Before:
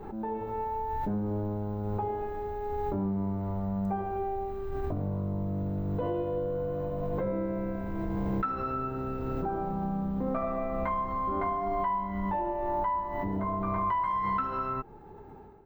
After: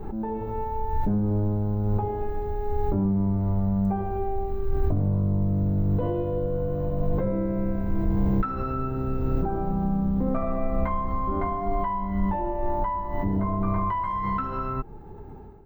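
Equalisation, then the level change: low shelf 64 Hz +6 dB; low shelf 320 Hz +8.5 dB; high shelf 9700 Hz +4.5 dB; 0.0 dB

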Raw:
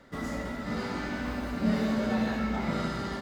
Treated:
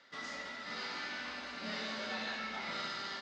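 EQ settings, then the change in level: band-pass 5300 Hz, Q 1.2; air absorption 170 m; +10.0 dB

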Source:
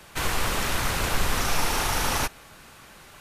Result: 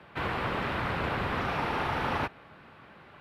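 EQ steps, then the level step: HPF 95 Hz 12 dB/oct; air absorption 440 m; 0.0 dB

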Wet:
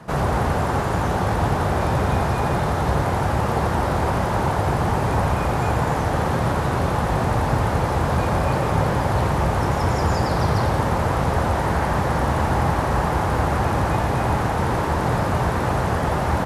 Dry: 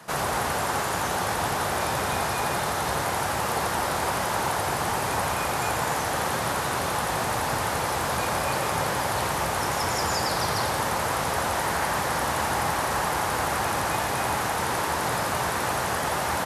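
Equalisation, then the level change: tilt -3.5 dB/oct; +2.5 dB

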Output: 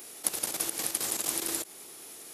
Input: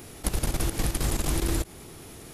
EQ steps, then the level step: HPF 360 Hz 12 dB/oct; high shelf 3900 Hz +10.5 dB; -5.5 dB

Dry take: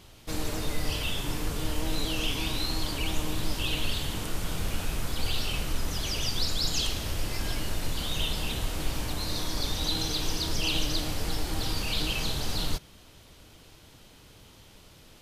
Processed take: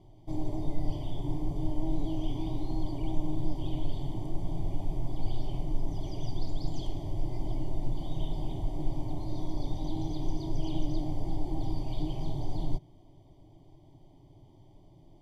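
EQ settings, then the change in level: running mean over 33 samples; fixed phaser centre 320 Hz, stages 8; +3.0 dB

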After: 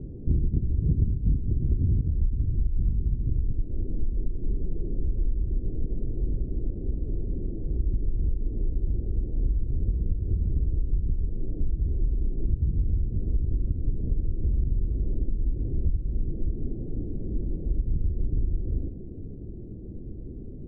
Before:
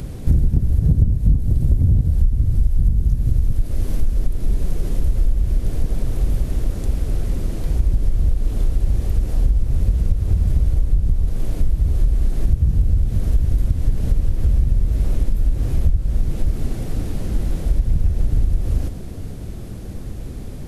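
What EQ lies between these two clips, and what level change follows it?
ladder low-pass 440 Hz, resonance 45%; 0.0 dB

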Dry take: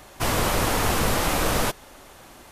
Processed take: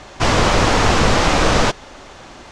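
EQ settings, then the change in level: LPF 6700 Hz 24 dB/oct; +8.5 dB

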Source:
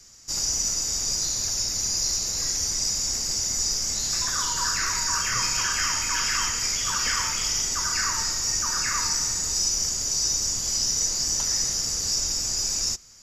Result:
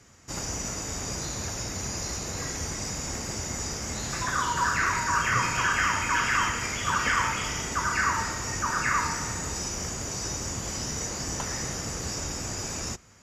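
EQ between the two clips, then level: HPF 65 Hz; air absorption 280 m; resonant high shelf 6700 Hz +11 dB, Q 3; +7.5 dB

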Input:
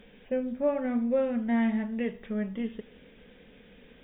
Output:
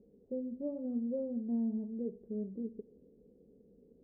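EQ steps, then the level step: HPF 44 Hz; ladder low-pass 470 Hz, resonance 50%; air absorption 380 m; 0.0 dB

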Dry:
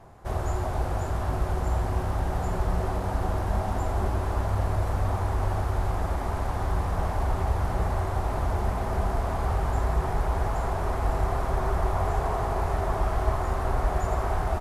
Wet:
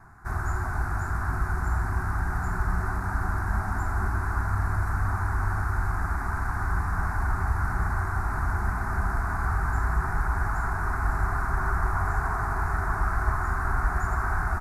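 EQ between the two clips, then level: bell 1500 Hz +12 dB 0.53 oct; fixed phaser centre 1300 Hz, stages 4; 0.0 dB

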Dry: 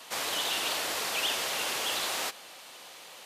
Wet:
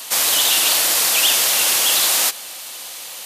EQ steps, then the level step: high shelf 3200 Hz +8 dB; high shelf 7400 Hz +9 dB; notch 420 Hz, Q 12; +7.5 dB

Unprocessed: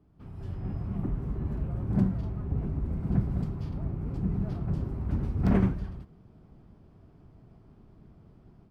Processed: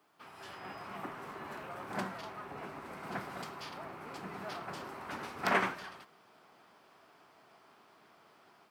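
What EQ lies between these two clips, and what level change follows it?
HPF 1100 Hz 12 dB/oct; +13.0 dB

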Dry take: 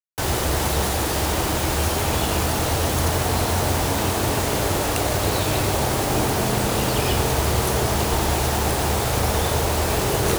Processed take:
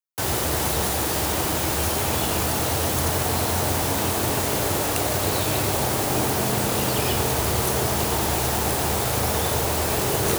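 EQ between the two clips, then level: HPF 76 Hz; high shelf 10000 Hz +7 dB; -2.0 dB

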